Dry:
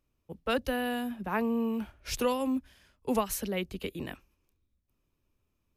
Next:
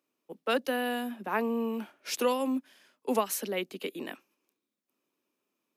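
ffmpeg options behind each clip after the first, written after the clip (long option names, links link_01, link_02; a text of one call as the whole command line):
ffmpeg -i in.wav -af "highpass=frequency=240:width=0.5412,highpass=frequency=240:width=1.3066,volume=1.5dB" out.wav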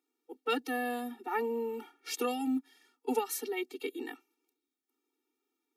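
ffmpeg -i in.wav -af "afftfilt=real='re*eq(mod(floor(b*sr/1024/240),2),1)':imag='im*eq(mod(floor(b*sr/1024/240),2),1)':win_size=1024:overlap=0.75" out.wav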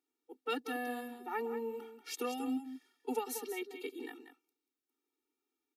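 ffmpeg -i in.wav -af "aecho=1:1:187:0.316,volume=-5dB" out.wav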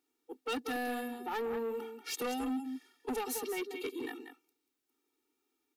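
ffmpeg -i in.wav -af "asoftclip=type=tanh:threshold=-38dB,volume=6.5dB" out.wav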